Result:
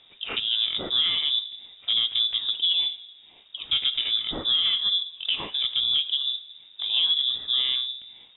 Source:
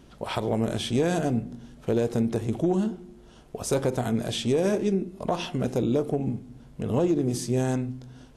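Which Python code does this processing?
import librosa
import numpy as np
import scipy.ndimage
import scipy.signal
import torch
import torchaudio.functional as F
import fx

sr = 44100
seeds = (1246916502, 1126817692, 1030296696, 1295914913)

y = fx.freq_invert(x, sr, carrier_hz=3700)
y = fx.env_lowpass(y, sr, base_hz=2900.0, full_db=-21.0)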